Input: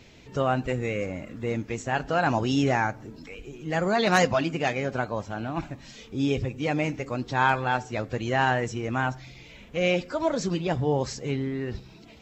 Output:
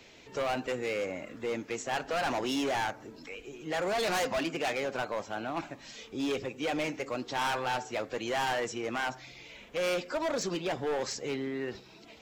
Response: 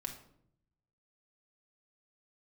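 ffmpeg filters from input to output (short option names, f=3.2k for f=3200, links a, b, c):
-filter_complex "[0:a]bass=f=250:g=-12,treble=f=4k:g=0,acrossover=split=140|1200|1800[a][b][c][d];[a]acompressor=threshold=-56dB:ratio=6[e];[e][b][c][d]amix=inputs=4:normalize=0,volume=27.5dB,asoftclip=hard,volume=-27.5dB"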